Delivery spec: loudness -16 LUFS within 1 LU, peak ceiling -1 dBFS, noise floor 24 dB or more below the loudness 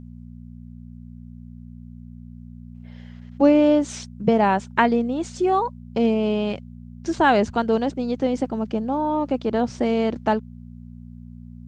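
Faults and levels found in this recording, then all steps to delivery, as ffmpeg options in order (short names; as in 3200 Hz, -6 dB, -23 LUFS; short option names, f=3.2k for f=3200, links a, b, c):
hum 60 Hz; harmonics up to 240 Hz; hum level -37 dBFS; loudness -21.5 LUFS; peak -3.5 dBFS; loudness target -16.0 LUFS
-> -af "bandreject=f=60:t=h:w=4,bandreject=f=120:t=h:w=4,bandreject=f=180:t=h:w=4,bandreject=f=240:t=h:w=4"
-af "volume=5.5dB,alimiter=limit=-1dB:level=0:latency=1"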